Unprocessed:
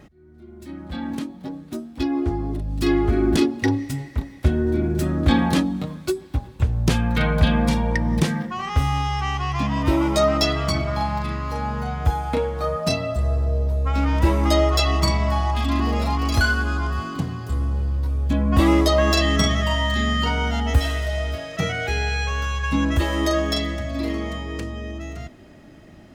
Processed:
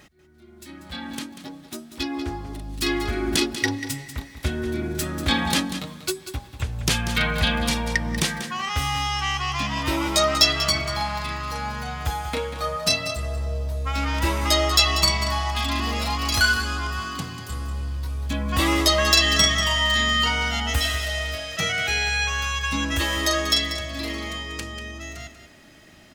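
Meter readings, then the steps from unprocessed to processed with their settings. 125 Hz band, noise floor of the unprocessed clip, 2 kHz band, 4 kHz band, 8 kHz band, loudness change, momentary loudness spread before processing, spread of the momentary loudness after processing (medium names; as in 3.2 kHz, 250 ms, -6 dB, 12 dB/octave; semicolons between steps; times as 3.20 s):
-6.5 dB, -45 dBFS, +3.5 dB, +6.5 dB, +8.0 dB, -0.5 dB, 11 LU, 15 LU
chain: tilt shelf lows -8 dB, about 1.2 kHz; on a send: delay 190 ms -11 dB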